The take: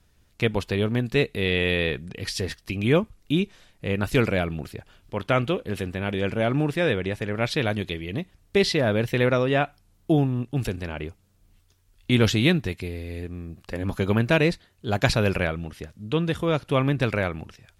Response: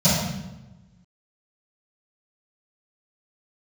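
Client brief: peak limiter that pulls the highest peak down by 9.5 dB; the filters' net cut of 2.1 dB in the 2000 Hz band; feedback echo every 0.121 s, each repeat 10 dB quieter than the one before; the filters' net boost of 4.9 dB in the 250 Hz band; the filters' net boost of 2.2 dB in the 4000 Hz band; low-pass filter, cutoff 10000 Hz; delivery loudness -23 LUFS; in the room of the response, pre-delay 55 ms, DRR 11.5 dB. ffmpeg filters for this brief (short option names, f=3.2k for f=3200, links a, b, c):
-filter_complex "[0:a]lowpass=10k,equalizer=f=250:t=o:g=6.5,equalizer=f=2k:t=o:g=-4,equalizer=f=4k:t=o:g=4,alimiter=limit=-13.5dB:level=0:latency=1,aecho=1:1:121|242|363|484:0.316|0.101|0.0324|0.0104,asplit=2[a][b];[1:a]atrim=start_sample=2205,adelay=55[c];[b][c]afir=irnorm=-1:irlink=0,volume=-30dB[d];[a][d]amix=inputs=2:normalize=0,volume=-1dB"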